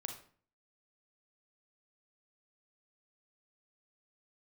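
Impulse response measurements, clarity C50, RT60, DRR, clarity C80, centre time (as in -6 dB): 7.0 dB, 0.45 s, 4.0 dB, 12.0 dB, 19 ms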